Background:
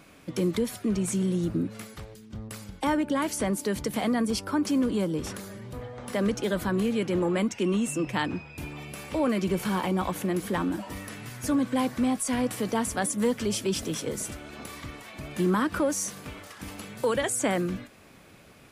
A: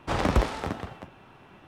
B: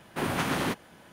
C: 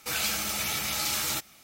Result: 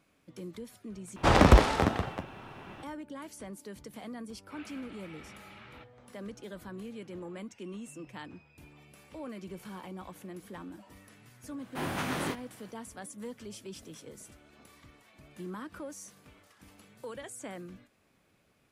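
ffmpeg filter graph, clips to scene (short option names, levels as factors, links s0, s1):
-filter_complex "[0:a]volume=0.15[s0];[1:a]acontrast=57[s1];[3:a]lowpass=f=2700:w=0.5412,lowpass=f=2700:w=1.3066[s2];[2:a]flanger=delay=20:depth=5.8:speed=2.3[s3];[s0]asplit=2[s4][s5];[s4]atrim=end=1.164[s6];[s1]atrim=end=1.67,asetpts=PTS-STARTPTS,volume=0.891[s7];[s5]atrim=start=2.826[s8];[s2]atrim=end=1.63,asetpts=PTS-STARTPTS,volume=0.15,afade=t=in:d=0.004:c=hsin,afade=t=out:st=1.626:d=0.004:c=hsin,adelay=4440[s9];[s3]atrim=end=1.12,asetpts=PTS-STARTPTS,volume=0.794,afade=t=in:d=0.004:c=hsin,afade=t=out:st=1.116:d=0.004:c=hsin,adelay=11590[s10];[s6][s7]acrossfade=d=0.004:c1=hsin:c2=hsin[s11];[s11][s8]acrossfade=d=0.004:c1=hsin:c2=hsin[s12];[s12][s9][s10]amix=inputs=3:normalize=0"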